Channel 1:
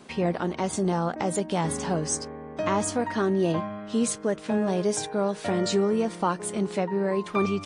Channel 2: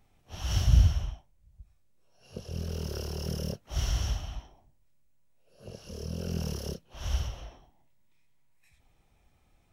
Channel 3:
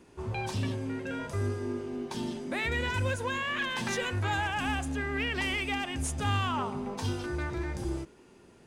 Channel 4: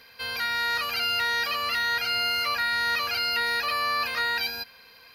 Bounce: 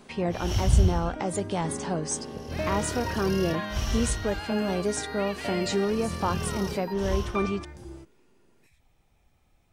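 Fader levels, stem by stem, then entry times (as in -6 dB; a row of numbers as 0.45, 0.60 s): -2.5, +0.5, -9.0, -16.5 dB; 0.00, 0.00, 0.00, 2.30 s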